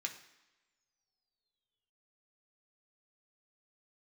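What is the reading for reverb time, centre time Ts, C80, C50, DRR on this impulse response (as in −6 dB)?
non-exponential decay, 15 ms, 13.0 dB, 10.5 dB, 2.0 dB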